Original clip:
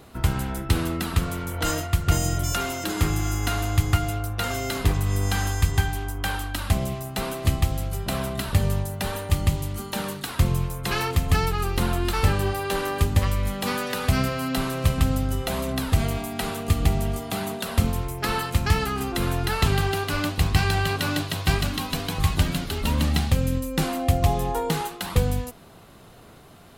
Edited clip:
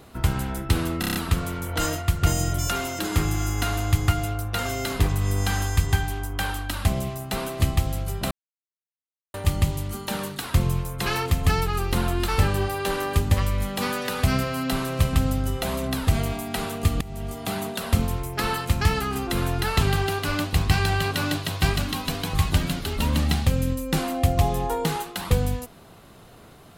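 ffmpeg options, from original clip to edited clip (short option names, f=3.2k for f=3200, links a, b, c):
-filter_complex "[0:a]asplit=9[a][b][c][d][e][f][g][h][i];[a]atrim=end=1.032[j];[b]atrim=start=0.998:end=1.032[k];[c]atrim=start=0.998:end=1.032[l];[d]atrim=start=0.998:end=1.032[m];[e]atrim=start=0.998:end=1.032[n];[f]atrim=start=0.998:end=8.16,asetpts=PTS-STARTPTS,afade=t=out:st=7.158:d=0.004:c=hsin[o];[g]atrim=start=8.16:end=9.19,asetpts=PTS-STARTPTS,volume=0[p];[h]atrim=start=9.19:end=16.86,asetpts=PTS-STARTPTS,afade=t=in:d=0.004:c=hsin,afade=t=out:st=7.666:d=0.004:c=hsin:silence=0.0841395[q];[i]atrim=start=16.86,asetpts=PTS-STARTPTS,afade=t=in:d=0.48:silence=0.0841395[r];[j][k]acrossfade=d=0.004:c1=hsin:c2=hsin[s];[s][l]acrossfade=d=0.004:c1=hsin:c2=hsin[t];[t][m]acrossfade=d=0.004:c1=hsin:c2=hsin[u];[u][n]acrossfade=d=0.004:c1=hsin:c2=hsin[v];[o][p][q][r]concat=n=4:v=0:a=1[w];[v][w]acrossfade=d=0.004:c1=hsin:c2=hsin"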